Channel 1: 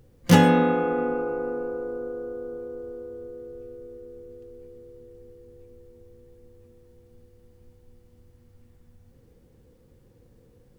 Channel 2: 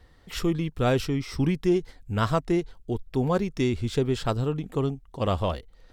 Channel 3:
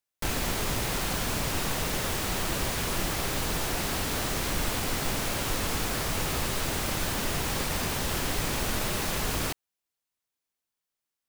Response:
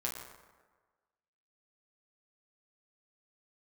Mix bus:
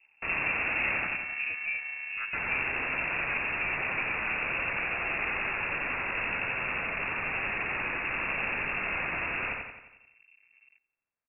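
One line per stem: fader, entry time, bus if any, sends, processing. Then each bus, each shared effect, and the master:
−4.0 dB, 0.00 s, no send, echo send −22 dB, downward compressor, threshold −27 dBFS, peak gain reduction 16 dB; half-wave rectification
−13.0 dB, 0.00 s, no send, no echo send, noise gate with hold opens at −52 dBFS
−2.0 dB, 0.00 s, muted 0:01.07–0:02.33, no send, echo send −3 dB, low-shelf EQ 60 Hz −12 dB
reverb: not used
echo: repeating echo 88 ms, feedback 52%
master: voice inversion scrambler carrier 2,700 Hz

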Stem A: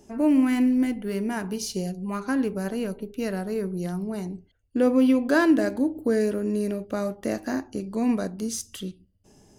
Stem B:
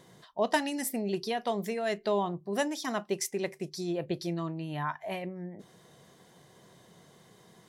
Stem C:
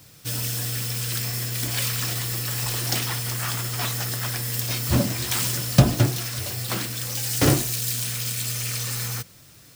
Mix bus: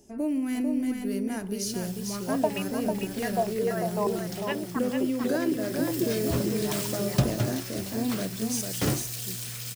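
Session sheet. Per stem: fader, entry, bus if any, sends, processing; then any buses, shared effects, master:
−4.0 dB, 0.00 s, no send, echo send −4.5 dB, drawn EQ curve 640 Hz 0 dB, 1,000 Hz −6 dB, 10,000 Hz +6 dB; downward compressor, threshold −21 dBFS, peak gain reduction 7 dB
−5.5 dB, 1.90 s, no send, echo send −5.5 dB, low-pass on a step sequencer 8.3 Hz 260–2,500 Hz
0:05.50 −17 dB → 0:05.92 −8.5 dB, 1.40 s, no send, no echo send, no processing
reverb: not used
echo: single-tap delay 447 ms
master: no processing

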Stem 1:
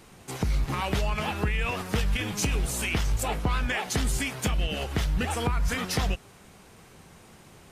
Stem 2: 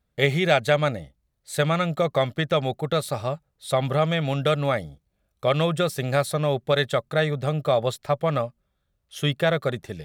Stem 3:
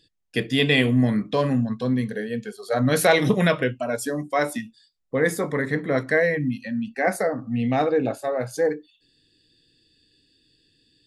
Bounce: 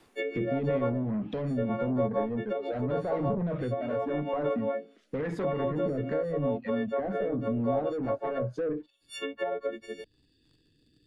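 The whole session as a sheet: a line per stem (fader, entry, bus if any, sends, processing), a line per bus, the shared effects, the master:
−14.5 dB, 0.00 s, bus A, no send, brickwall limiter −25 dBFS, peak gain reduction 8 dB; automatic ducking −9 dB, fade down 0.30 s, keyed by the second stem
−5.0 dB, 0.00 s, bus A, no send, every partial snapped to a pitch grid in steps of 4 semitones; comb filter 1.9 ms, depth 34%
−10.5 dB, 0.00 s, no bus, no send, low-shelf EQ 460 Hz +7 dB; brickwall limiter −14.5 dBFS, peak gain reduction 12 dB; leveller curve on the samples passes 2
bus A: 0.0 dB, elliptic high-pass filter 230 Hz, stop band 40 dB; brickwall limiter −16.5 dBFS, peak gain reduction 8 dB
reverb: not used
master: rotating-speaker cabinet horn 0.85 Hz; treble cut that deepens with the level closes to 940 Hz, closed at −26.5 dBFS; multiband upward and downward compressor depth 40%

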